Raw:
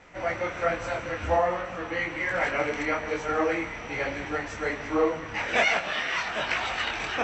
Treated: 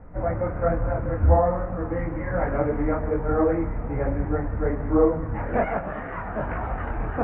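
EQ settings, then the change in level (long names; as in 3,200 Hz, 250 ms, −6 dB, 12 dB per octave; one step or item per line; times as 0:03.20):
low-pass filter 1,600 Hz 24 dB per octave
spectral tilt −4.5 dB per octave
notch filter 360 Hz, Q 12
0.0 dB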